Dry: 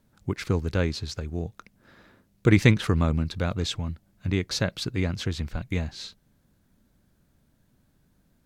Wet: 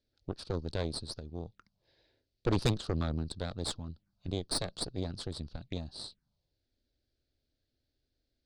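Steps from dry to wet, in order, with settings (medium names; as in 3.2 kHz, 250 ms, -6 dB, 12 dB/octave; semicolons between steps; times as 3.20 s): four-pole ladder low-pass 5.1 kHz, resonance 60%; touch-sensitive phaser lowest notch 170 Hz, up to 2.1 kHz, full sweep at -38.5 dBFS; Chebyshev shaper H 6 -9 dB, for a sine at -16 dBFS; trim -2.5 dB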